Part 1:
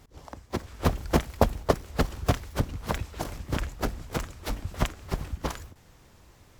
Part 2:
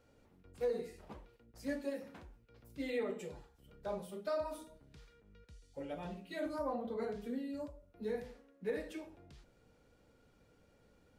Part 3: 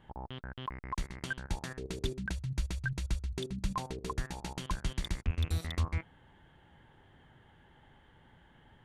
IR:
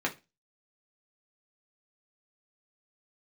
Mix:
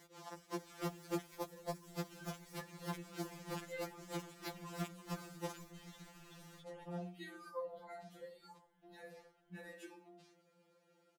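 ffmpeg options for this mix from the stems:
-filter_complex "[0:a]highpass=f=310:p=1,volume=1dB[a];[1:a]highpass=f=180:w=0.5412,highpass=f=180:w=1.3066,adelay=900,volume=0.5dB[b];[2:a]adelay=900,volume=-17dB[c];[a][b][c]amix=inputs=3:normalize=0,acrossover=split=450|5200[d][e][f];[d]acompressor=threshold=-39dB:ratio=4[g];[e]acompressor=threshold=-46dB:ratio=4[h];[f]acompressor=threshold=-54dB:ratio=4[i];[g][h][i]amix=inputs=3:normalize=0,afftfilt=real='re*2.83*eq(mod(b,8),0)':imag='im*2.83*eq(mod(b,8),0)':win_size=2048:overlap=0.75"

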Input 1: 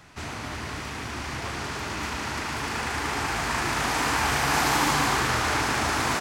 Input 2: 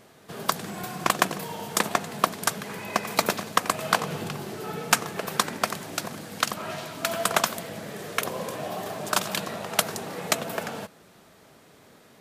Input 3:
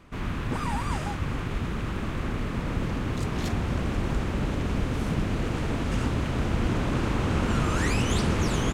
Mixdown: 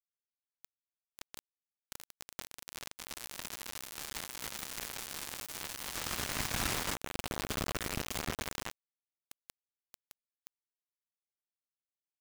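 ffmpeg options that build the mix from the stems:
-filter_complex "[0:a]highpass=f=1.3k:p=1,equalizer=f=12k:t=o:w=1:g=2,adelay=750,volume=-4.5dB[a];[1:a]firequalizer=gain_entry='entry(110,0);entry(150,-6);entry(220,7);entry(360,-6);entry(640,-19);entry(1700,-18);entry(2600,-4);entry(4600,-3);entry(8500,-9);entry(15000,-25)':delay=0.05:min_phase=1,adelay=150,volume=-11.5dB[b];[2:a]bandreject=f=60:t=h:w=6,bandreject=f=120:t=h:w=6,bandreject=f=180:t=h:w=6,bandreject=f=240:t=h:w=6,bandreject=f=300:t=h:w=6,bandreject=f=360:t=h:w=6,volume=-11.5dB,afade=t=in:st=5.76:d=0.5:silence=0.398107[c];[a][b]amix=inputs=2:normalize=0,bandreject=f=174.1:t=h:w=4,bandreject=f=348.2:t=h:w=4,bandreject=f=522.3:t=h:w=4,bandreject=f=696.4:t=h:w=4,bandreject=f=870.5:t=h:w=4,bandreject=f=1.0446k:t=h:w=4,bandreject=f=1.2187k:t=h:w=4,bandreject=f=1.3928k:t=h:w=4,bandreject=f=1.5669k:t=h:w=4,bandreject=f=1.741k:t=h:w=4,bandreject=f=1.9151k:t=h:w=4,bandreject=f=2.0892k:t=h:w=4,bandreject=f=2.2633k:t=h:w=4,bandreject=f=2.4374k:t=h:w=4,bandreject=f=2.6115k:t=h:w=4,bandreject=f=2.7856k:t=h:w=4,bandreject=f=2.9597k:t=h:w=4,bandreject=f=3.1338k:t=h:w=4,bandreject=f=3.3079k:t=h:w=4,bandreject=f=3.482k:t=h:w=4,bandreject=f=3.6561k:t=h:w=4,bandreject=f=3.8302k:t=h:w=4,bandreject=f=4.0043k:t=h:w=4,bandreject=f=4.1784k:t=h:w=4,bandreject=f=4.3525k:t=h:w=4,bandreject=f=4.5266k:t=h:w=4,bandreject=f=4.7007k:t=h:w=4,bandreject=f=4.8748k:t=h:w=4,bandreject=f=5.0489k:t=h:w=4,bandreject=f=5.223k:t=h:w=4,bandreject=f=5.3971k:t=h:w=4,bandreject=f=5.5712k:t=h:w=4,bandreject=f=5.7453k:t=h:w=4,alimiter=level_in=5dB:limit=-24dB:level=0:latency=1:release=19,volume=-5dB,volume=0dB[d];[c][d]amix=inputs=2:normalize=0,acrusher=bits=4:mix=0:aa=0.000001"

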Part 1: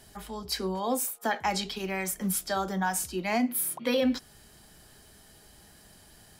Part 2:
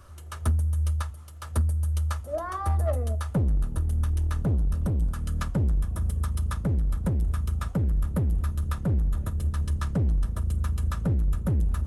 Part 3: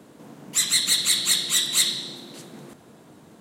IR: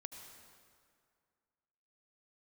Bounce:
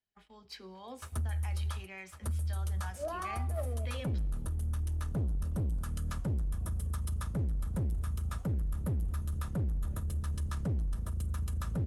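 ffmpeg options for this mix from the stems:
-filter_complex "[0:a]agate=range=-23dB:threshold=-42dB:ratio=16:detection=peak,equalizer=f=2.6k:t=o:w=1.4:g=9,adynamicsmooth=sensitivity=3:basefreq=6.2k,volume=-19.5dB,asplit=2[a][b];[b]volume=-11dB[c];[1:a]agate=range=-24dB:threshold=-36dB:ratio=16:detection=peak,highshelf=f=5.8k:g=5.5,adelay=700,volume=-5dB[d];[3:a]atrim=start_sample=2205[e];[c][e]afir=irnorm=-1:irlink=0[f];[a][d][f]amix=inputs=3:normalize=0,alimiter=level_in=4.5dB:limit=-24dB:level=0:latency=1:release=28,volume=-4.5dB"

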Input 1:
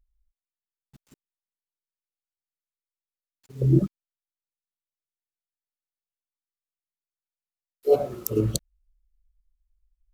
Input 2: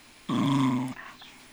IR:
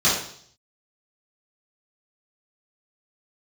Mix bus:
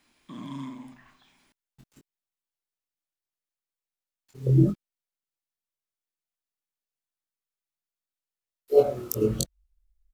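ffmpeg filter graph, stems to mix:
-filter_complex "[0:a]flanger=delay=19.5:depth=4.9:speed=0.67,adelay=850,volume=3dB[a];[1:a]volume=-15.5dB,asplit=2[b][c];[c]volume=-24dB[d];[2:a]atrim=start_sample=2205[e];[d][e]afir=irnorm=-1:irlink=0[f];[a][b][f]amix=inputs=3:normalize=0"

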